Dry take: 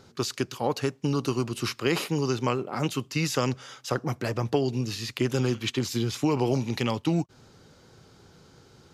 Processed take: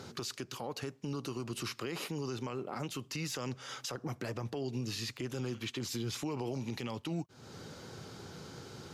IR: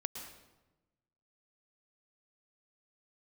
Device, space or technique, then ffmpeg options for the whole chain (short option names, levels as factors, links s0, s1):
podcast mastering chain: -af "highpass=84,deesser=0.6,acompressor=threshold=0.00708:ratio=3,alimiter=level_in=3.55:limit=0.0631:level=0:latency=1:release=58,volume=0.282,volume=2.24" -ar 48000 -c:a libmp3lame -b:a 96k